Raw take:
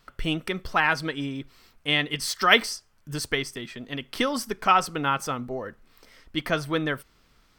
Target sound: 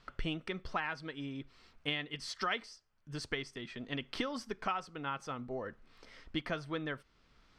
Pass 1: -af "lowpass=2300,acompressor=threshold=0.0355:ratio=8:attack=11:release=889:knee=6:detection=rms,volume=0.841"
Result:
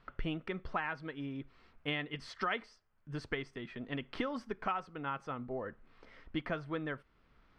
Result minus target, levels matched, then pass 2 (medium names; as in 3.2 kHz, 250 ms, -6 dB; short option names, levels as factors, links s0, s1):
4 kHz band -4.5 dB
-af "lowpass=5300,acompressor=threshold=0.0355:ratio=8:attack=11:release=889:knee=6:detection=rms,volume=0.841"